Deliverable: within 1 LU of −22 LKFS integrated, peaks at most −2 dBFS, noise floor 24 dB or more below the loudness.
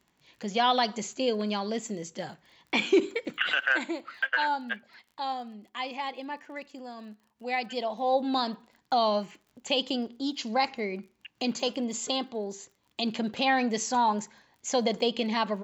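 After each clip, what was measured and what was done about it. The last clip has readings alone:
crackle rate 34 per second; integrated loudness −29.0 LKFS; sample peak −12.5 dBFS; target loudness −22.0 LKFS
→ click removal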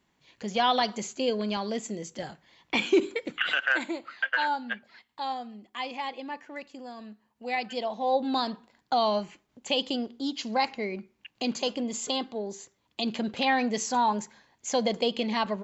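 crackle rate 0.064 per second; integrated loudness −29.0 LKFS; sample peak −12.5 dBFS; target loudness −22.0 LKFS
→ level +7 dB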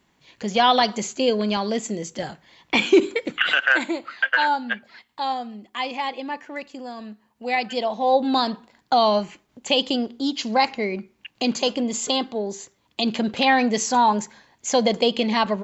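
integrated loudness −22.0 LKFS; sample peak −5.5 dBFS; background noise floor −66 dBFS

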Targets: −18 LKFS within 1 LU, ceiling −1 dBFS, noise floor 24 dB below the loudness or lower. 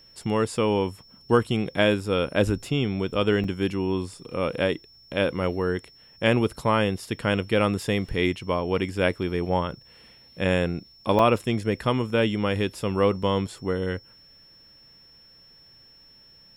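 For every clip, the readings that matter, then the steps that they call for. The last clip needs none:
number of dropouts 3; longest dropout 3.1 ms; interfering tone 5,400 Hz; level of the tone −51 dBFS; integrated loudness −25.0 LKFS; sample peak −6.0 dBFS; target loudness −18.0 LKFS
→ repair the gap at 0:03.44/0:11.19/0:13.23, 3.1 ms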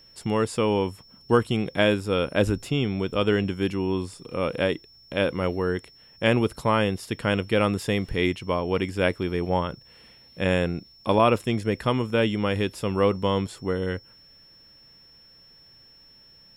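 number of dropouts 0; interfering tone 5,400 Hz; level of the tone −51 dBFS
→ notch filter 5,400 Hz, Q 30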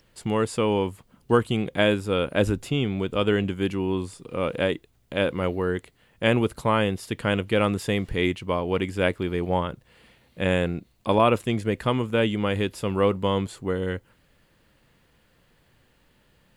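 interfering tone none found; integrated loudness −25.0 LKFS; sample peak −6.0 dBFS; target loudness −18.0 LKFS
→ level +7 dB
brickwall limiter −1 dBFS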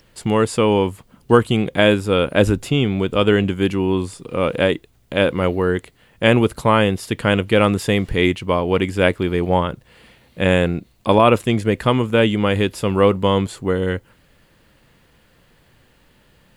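integrated loudness −18.5 LKFS; sample peak −1.0 dBFS; background noise floor −56 dBFS

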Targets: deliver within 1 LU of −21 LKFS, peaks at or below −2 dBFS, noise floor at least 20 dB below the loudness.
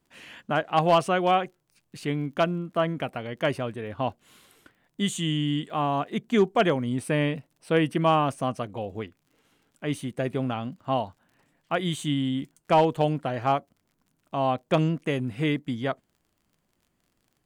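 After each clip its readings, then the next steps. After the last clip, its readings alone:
crackle rate 36 per second; integrated loudness −26.5 LKFS; sample peak −12.0 dBFS; target loudness −21.0 LKFS
→ click removal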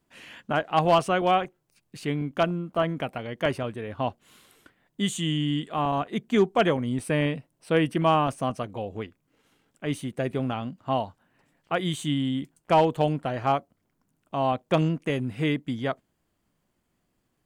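crackle rate 0.23 per second; integrated loudness −26.5 LKFS; sample peak −11.0 dBFS; target loudness −21.0 LKFS
→ level +5.5 dB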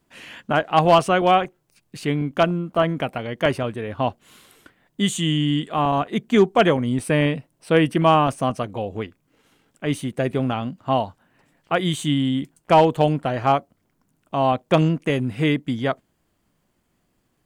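integrated loudness −21.0 LKFS; sample peak −5.5 dBFS; background noise floor −69 dBFS

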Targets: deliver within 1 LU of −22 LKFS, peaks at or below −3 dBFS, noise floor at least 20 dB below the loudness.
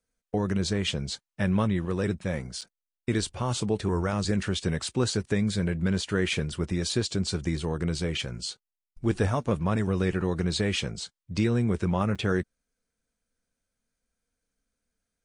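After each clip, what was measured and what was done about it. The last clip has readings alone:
number of dropouts 2; longest dropout 6.3 ms; integrated loudness −28.5 LKFS; sample peak −11.5 dBFS; target loudness −22.0 LKFS
→ repair the gap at 0:02.61/0:12.15, 6.3 ms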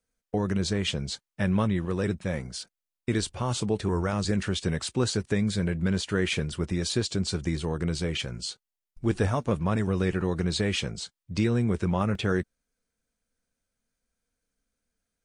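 number of dropouts 0; integrated loudness −28.5 LKFS; sample peak −11.5 dBFS; target loudness −22.0 LKFS
→ level +6.5 dB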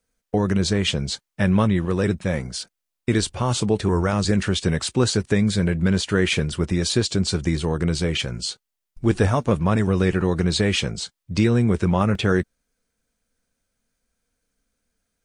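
integrated loudness −22.0 LKFS; sample peak −5.0 dBFS; background noise floor −82 dBFS

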